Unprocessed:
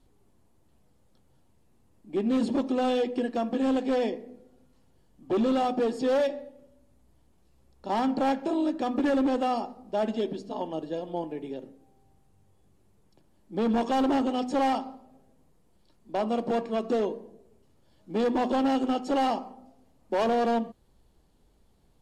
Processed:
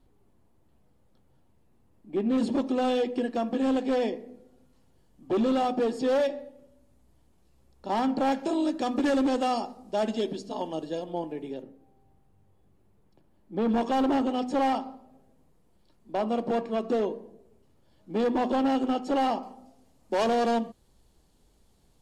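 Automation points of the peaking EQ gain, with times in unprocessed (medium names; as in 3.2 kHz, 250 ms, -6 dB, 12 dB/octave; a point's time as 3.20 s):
peaking EQ 7.3 kHz 2 oct
-6.5 dB
from 2.38 s +0.5 dB
from 8.32 s +8 dB
from 11.04 s +1 dB
from 11.62 s -9 dB
from 13.68 s -2.5 dB
from 19.43 s +6.5 dB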